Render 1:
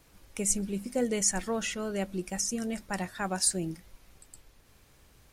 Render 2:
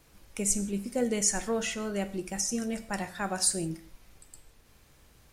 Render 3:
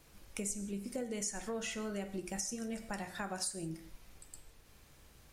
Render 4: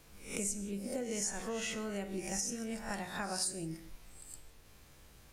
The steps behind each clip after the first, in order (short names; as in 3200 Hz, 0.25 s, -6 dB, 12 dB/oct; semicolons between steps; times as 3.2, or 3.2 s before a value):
non-linear reverb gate 0.2 s falling, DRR 10 dB
compressor 6:1, threshold -35 dBFS, peak gain reduction 13.5 dB; de-hum 58.62 Hz, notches 38; gain -1 dB
spectral swells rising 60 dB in 0.45 s